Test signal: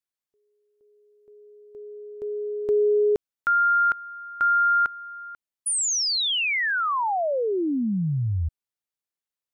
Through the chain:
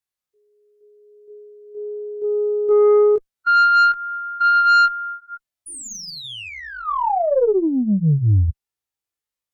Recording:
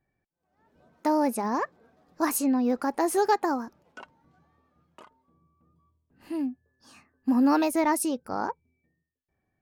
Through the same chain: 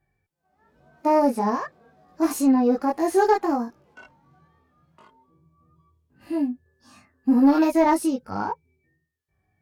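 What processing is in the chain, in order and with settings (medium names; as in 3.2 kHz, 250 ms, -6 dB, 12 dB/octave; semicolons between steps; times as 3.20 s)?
chorus voices 6, 0.35 Hz, delay 20 ms, depth 1.5 ms; Chebyshev shaper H 4 -27 dB, 5 -16 dB, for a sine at -11.5 dBFS; harmonic-percussive split percussive -16 dB; trim +5.5 dB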